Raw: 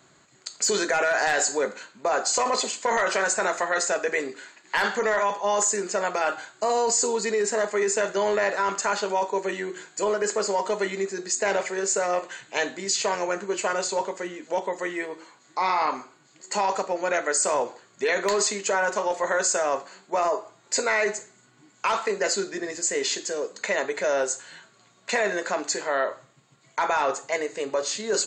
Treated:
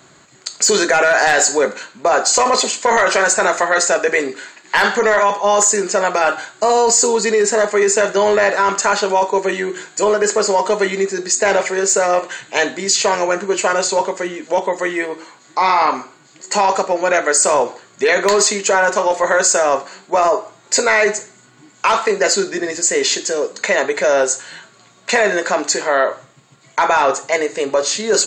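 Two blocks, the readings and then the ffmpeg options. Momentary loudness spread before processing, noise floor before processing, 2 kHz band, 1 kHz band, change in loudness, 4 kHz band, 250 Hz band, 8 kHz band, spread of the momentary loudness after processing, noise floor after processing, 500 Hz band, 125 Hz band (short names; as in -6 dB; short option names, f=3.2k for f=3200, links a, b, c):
8 LU, -59 dBFS, +9.5 dB, +10.0 dB, +10.0 dB, +10.0 dB, +10.0 dB, +10.0 dB, 8 LU, -49 dBFS, +10.0 dB, n/a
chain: -af "acontrast=83,volume=3dB"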